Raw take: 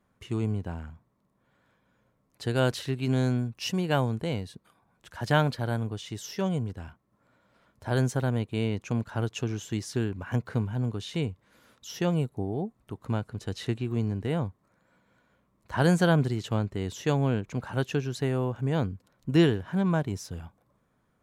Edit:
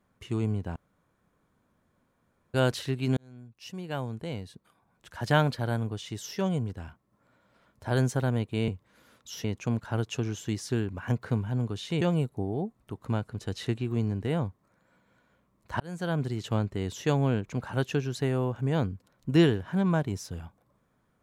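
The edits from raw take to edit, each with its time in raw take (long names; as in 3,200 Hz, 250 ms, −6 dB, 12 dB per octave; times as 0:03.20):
0:00.76–0:02.54: fill with room tone
0:03.17–0:05.20: fade in
0:11.25–0:12.01: move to 0:08.68
0:15.80–0:16.53: fade in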